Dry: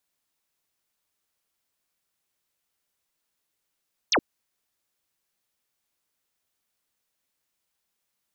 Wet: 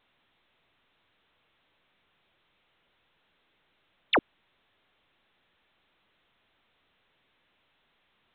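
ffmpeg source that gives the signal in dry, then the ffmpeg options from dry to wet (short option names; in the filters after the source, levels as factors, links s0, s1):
-f lavfi -i "aevalsrc='0.126*clip(t/0.002,0,1)*clip((0.07-t)/0.002,0,1)*sin(2*PI*6800*0.07/log(220/6800)*(exp(log(220/6800)*t/0.07)-1))':d=0.07:s=44100"
-ar 8000 -c:a pcm_alaw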